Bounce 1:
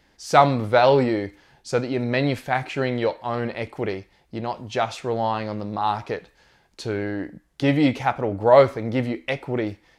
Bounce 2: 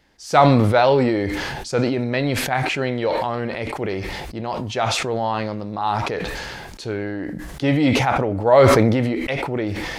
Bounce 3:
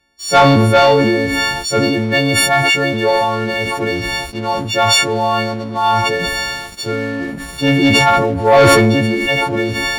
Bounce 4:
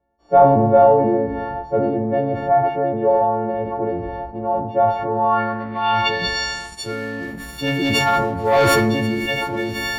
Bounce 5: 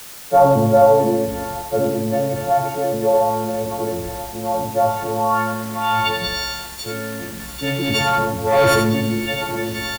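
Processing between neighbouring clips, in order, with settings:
sustainer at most 24 dB/s
frequency quantiser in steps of 4 st; high shelf 5500 Hz -8.5 dB; sample leveller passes 2; gain -2 dB
low-pass sweep 700 Hz -> 15000 Hz, 4.95–7.09; reverb RT60 1.0 s, pre-delay 8 ms, DRR 8.5 dB; gain -7 dB
on a send: echo 81 ms -6.5 dB; on the sum: requantised 6-bit, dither triangular; gain -1 dB

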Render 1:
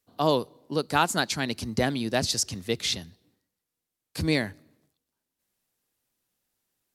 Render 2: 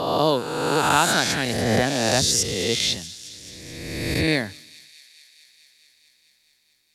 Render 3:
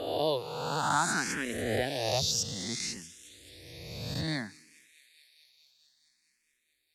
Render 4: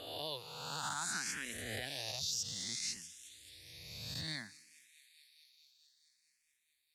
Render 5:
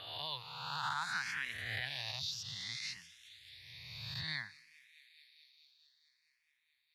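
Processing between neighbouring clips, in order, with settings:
spectral swells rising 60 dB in 1.67 s; thin delay 0.216 s, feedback 79%, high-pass 3700 Hz, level -15.5 dB; gain +1 dB
endless phaser +0.59 Hz; gain -7.5 dB
passive tone stack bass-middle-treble 5-5-5; limiter -32 dBFS, peak gain reduction 8 dB; gain +4 dB
graphic EQ 125/250/500/1000/2000/4000/8000 Hz +11/-8/-6/+11/+9/+9/-12 dB; gain -6.5 dB

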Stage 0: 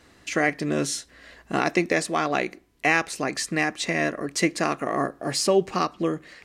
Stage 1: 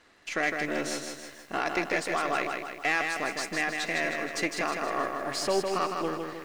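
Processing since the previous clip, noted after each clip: half-wave gain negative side -7 dB; overdrive pedal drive 13 dB, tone 3600 Hz, clips at -7 dBFS; lo-fi delay 0.157 s, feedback 55%, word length 8-bit, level -4.5 dB; gain -7.5 dB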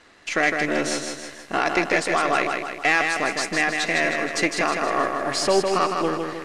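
LPF 11000 Hz 24 dB/oct; gain +7.5 dB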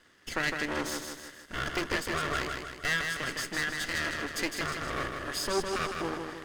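minimum comb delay 0.62 ms; gain -6.5 dB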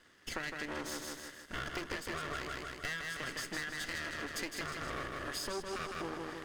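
compressor, threshold -34 dBFS, peak gain reduction 10 dB; gain -2 dB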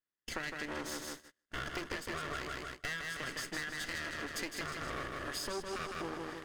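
gate -44 dBFS, range -35 dB

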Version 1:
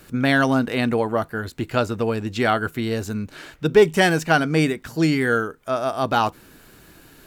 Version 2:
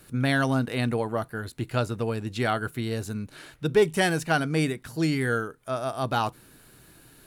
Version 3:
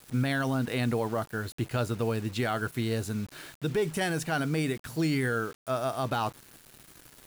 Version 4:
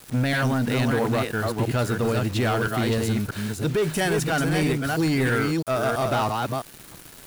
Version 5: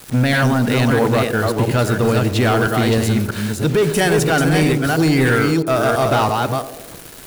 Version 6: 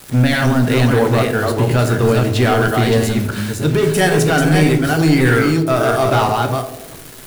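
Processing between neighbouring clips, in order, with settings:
thirty-one-band EQ 125 Hz +8 dB, 4000 Hz +3 dB, 10000 Hz +11 dB; gain -6.5 dB
limiter -19.5 dBFS, peak gain reduction 9.5 dB; requantised 8-bit, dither none
reverse delay 0.331 s, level -4 dB; sample leveller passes 2
narrowing echo 89 ms, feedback 70%, band-pass 420 Hz, level -9.5 dB; gain +7 dB
reverb RT60 0.50 s, pre-delay 7 ms, DRR 6 dB

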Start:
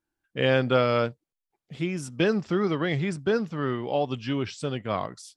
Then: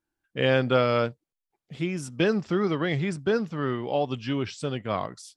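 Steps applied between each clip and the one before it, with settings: nothing audible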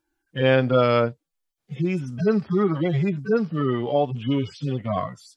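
median-filter separation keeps harmonic; in parallel at +1.5 dB: compressor, threshold -34 dBFS, peak gain reduction 15.5 dB; on the sum: gain +2.5 dB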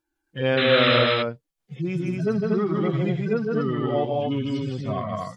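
painted sound noise, 0.57–0.99, 1100–4100 Hz -21 dBFS; loudspeakers at several distances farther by 54 m -3 dB, 82 m -3 dB; gain -4 dB

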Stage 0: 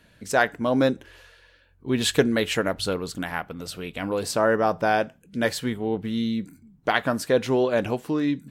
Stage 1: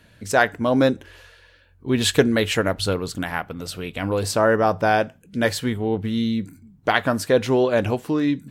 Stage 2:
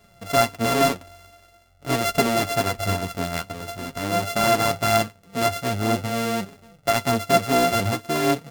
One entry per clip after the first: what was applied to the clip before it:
bell 100 Hz +10 dB 0.23 oct; gain +3 dB
sample sorter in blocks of 64 samples; soft clip -8 dBFS, distortion -20 dB; flange 0.46 Hz, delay 4.6 ms, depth 7.3 ms, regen +40%; gain +3 dB

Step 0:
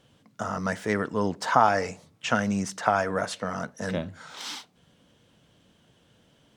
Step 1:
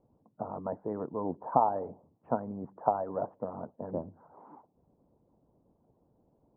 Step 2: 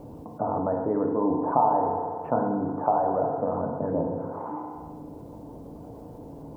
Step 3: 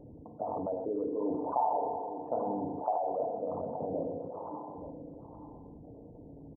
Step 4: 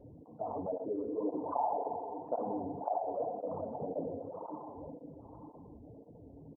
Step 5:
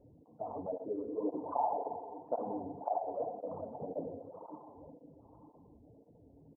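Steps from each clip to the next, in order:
elliptic low-pass 950 Hz, stop band 80 dB; harmonic-percussive split harmonic -14 dB
FDN reverb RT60 1.1 s, low-frequency decay 0.9×, high-frequency decay 0.9×, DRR 1 dB; fast leveller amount 50%
formant sharpening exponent 2; echo 0.874 s -11.5 dB; gain -8 dB
tape flanging out of phase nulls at 1.9 Hz, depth 6.8 ms
upward expander 1.5:1, over -46 dBFS; gain +1 dB

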